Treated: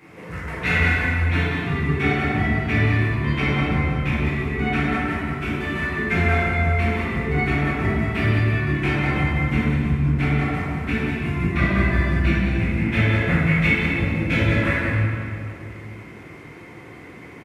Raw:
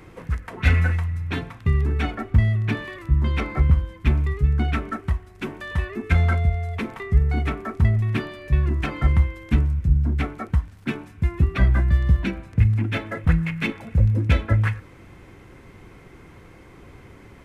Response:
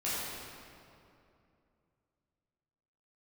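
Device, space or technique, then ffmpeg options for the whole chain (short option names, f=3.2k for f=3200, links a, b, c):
PA in a hall: -filter_complex "[0:a]highpass=130,equalizer=f=2.1k:t=o:w=0.58:g=6,aecho=1:1:191:0.422[a];[1:a]atrim=start_sample=2205[b];[a][b]afir=irnorm=-1:irlink=0,volume=-2dB"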